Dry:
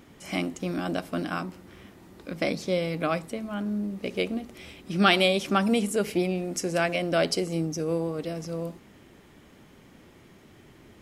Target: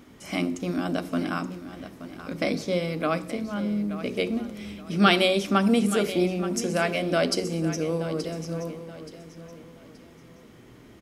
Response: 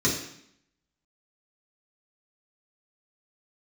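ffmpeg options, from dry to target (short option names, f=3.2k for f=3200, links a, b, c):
-filter_complex "[0:a]aecho=1:1:876|1752|2628:0.224|0.0694|0.0215,asplit=2[a][b];[1:a]atrim=start_sample=2205[c];[b][c]afir=irnorm=-1:irlink=0,volume=-23.5dB[d];[a][d]amix=inputs=2:normalize=0"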